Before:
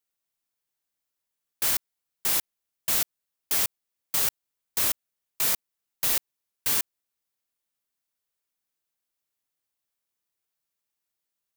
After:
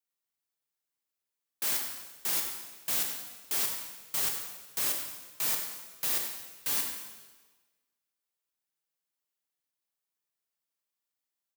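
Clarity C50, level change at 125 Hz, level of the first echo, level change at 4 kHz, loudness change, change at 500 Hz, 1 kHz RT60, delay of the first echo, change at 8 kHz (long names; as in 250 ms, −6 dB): 4.0 dB, −7.0 dB, −11.0 dB, −4.0 dB, −5.0 dB, −4.5 dB, 1.3 s, 93 ms, −4.5 dB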